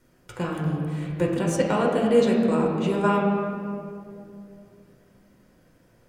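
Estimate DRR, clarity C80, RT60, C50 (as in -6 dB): -2.5 dB, 3.0 dB, 2.5 s, 1.5 dB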